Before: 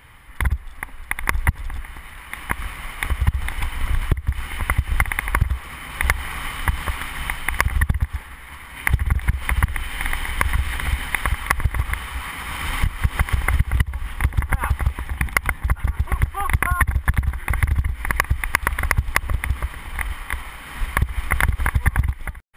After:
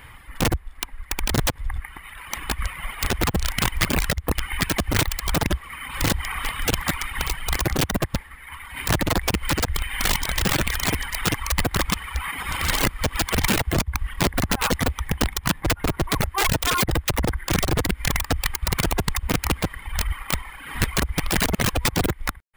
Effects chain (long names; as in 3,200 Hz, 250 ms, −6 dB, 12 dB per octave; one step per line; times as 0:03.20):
wrap-around overflow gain 17.5 dB
reverb reduction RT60 1.6 s
level +4 dB